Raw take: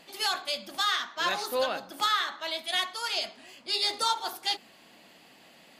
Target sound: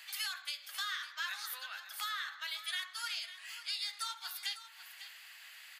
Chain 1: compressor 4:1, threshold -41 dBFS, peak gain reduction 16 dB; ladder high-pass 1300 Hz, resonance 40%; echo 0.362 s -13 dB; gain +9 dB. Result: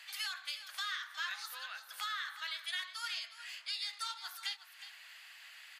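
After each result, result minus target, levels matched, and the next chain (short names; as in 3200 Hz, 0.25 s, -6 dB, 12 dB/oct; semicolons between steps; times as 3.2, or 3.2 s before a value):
echo 0.188 s early; 8000 Hz band -3.0 dB
compressor 4:1, threshold -41 dBFS, peak gain reduction 16 dB; ladder high-pass 1300 Hz, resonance 40%; echo 0.55 s -13 dB; gain +9 dB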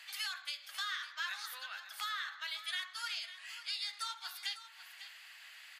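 8000 Hz band -2.5 dB
compressor 4:1, threshold -41 dBFS, peak gain reduction 16 dB; ladder high-pass 1300 Hz, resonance 40%; high shelf 11000 Hz +11 dB; echo 0.55 s -13 dB; gain +9 dB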